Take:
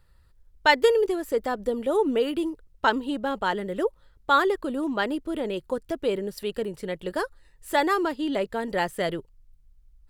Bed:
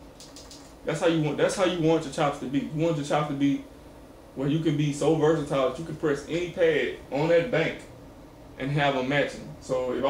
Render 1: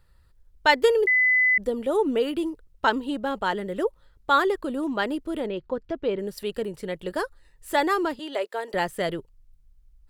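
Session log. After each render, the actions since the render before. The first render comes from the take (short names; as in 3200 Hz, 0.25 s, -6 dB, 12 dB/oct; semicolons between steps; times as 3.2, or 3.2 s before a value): 1.07–1.58 bleep 2010 Hz -16.5 dBFS; 5.46–6.19 air absorption 190 m; 8.19–8.74 HPF 400 Hz 24 dB/oct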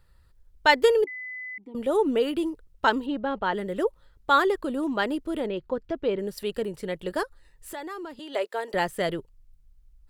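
1.04–1.75 vowel filter u; 3.06–3.54 air absorption 190 m; 7.23–8.34 compressor 3:1, threshold -38 dBFS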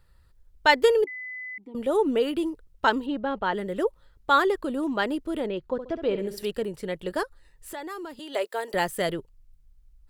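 5.72–6.51 flutter echo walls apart 11.5 m, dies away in 0.41 s; 7.88–9.12 high shelf 7700 Hz +9.5 dB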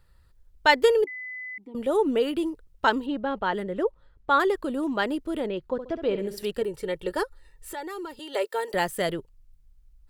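3.63–4.4 LPF 2100 Hz 6 dB/oct; 6.61–8.72 comb 2.2 ms, depth 53%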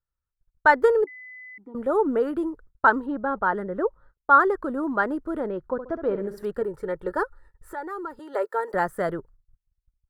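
gate -49 dBFS, range -29 dB; resonant high shelf 2000 Hz -11.5 dB, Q 3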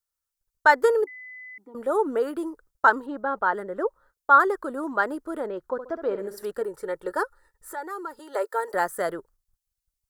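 tone controls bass -13 dB, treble +11 dB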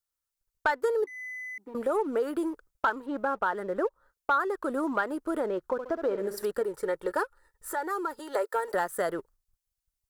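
compressor 3:1, threshold -30 dBFS, peak gain reduction 14.5 dB; sample leveller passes 1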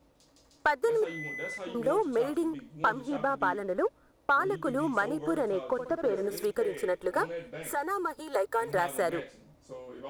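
add bed -17 dB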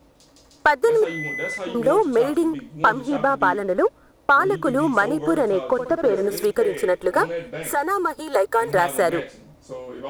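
gain +9.5 dB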